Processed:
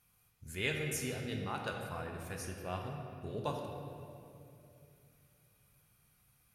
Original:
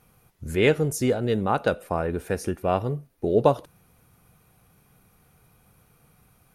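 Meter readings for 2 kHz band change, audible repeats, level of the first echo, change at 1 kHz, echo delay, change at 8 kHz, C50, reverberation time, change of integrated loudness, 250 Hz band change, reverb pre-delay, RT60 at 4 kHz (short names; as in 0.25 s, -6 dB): -9.0 dB, none, none, -14.5 dB, none, -6.5 dB, 3.0 dB, 2.7 s, -15.0 dB, -16.0 dB, 8 ms, 1.7 s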